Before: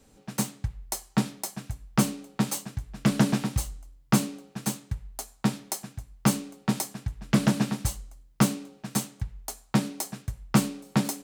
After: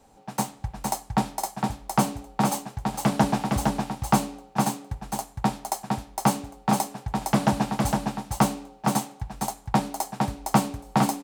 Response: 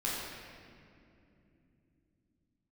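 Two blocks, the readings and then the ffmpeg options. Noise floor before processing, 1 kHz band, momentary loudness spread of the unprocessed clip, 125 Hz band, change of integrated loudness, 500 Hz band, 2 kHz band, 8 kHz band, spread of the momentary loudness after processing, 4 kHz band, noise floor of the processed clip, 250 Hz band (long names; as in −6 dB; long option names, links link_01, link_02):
−59 dBFS, +11.0 dB, 12 LU, 0.0 dB, +2.0 dB, +5.5 dB, +2.0 dB, 0.0 dB, 8 LU, +0.5 dB, −53 dBFS, +0.5 dB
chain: -af "equalizer=frequency=820:width_type=o:width=0.81:gain=14.5,aecho=1:1:460:0.668,volume=-1.5dB"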